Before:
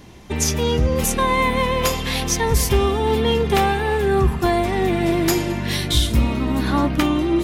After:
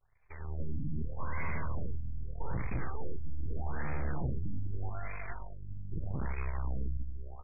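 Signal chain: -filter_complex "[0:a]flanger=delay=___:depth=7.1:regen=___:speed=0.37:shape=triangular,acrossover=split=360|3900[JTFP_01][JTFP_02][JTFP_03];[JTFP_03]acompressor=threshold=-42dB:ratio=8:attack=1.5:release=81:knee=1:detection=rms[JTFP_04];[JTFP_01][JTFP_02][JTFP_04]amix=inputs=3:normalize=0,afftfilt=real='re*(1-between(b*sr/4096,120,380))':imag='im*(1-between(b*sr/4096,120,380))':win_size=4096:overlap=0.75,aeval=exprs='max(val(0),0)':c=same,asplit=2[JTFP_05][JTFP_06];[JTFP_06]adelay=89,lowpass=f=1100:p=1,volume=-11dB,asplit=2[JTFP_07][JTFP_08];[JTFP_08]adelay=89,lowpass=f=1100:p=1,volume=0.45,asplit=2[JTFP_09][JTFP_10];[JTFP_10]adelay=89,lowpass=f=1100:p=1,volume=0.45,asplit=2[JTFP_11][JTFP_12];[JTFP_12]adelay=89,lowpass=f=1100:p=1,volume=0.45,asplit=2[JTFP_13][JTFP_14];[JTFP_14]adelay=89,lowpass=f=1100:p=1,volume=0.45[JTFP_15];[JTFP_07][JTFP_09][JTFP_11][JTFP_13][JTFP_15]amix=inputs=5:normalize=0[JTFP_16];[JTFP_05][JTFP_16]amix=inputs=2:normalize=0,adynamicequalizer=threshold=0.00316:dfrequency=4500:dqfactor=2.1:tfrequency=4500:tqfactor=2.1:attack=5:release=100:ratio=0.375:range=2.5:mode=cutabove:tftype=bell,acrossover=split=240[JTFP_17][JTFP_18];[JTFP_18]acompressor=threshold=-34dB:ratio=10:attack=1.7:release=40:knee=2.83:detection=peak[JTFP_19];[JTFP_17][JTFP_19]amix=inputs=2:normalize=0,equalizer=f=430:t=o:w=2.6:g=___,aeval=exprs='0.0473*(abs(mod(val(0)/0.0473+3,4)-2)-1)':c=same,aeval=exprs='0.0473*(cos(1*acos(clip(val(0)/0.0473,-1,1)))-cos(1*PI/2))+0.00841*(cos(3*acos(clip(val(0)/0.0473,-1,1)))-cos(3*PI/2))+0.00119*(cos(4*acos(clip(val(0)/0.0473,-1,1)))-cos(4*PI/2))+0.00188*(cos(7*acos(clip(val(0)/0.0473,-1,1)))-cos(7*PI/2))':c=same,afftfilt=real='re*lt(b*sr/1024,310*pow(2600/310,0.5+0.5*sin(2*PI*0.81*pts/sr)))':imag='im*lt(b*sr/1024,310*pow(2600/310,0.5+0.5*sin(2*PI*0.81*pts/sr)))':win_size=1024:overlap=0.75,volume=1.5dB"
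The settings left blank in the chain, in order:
5.2, 6, -15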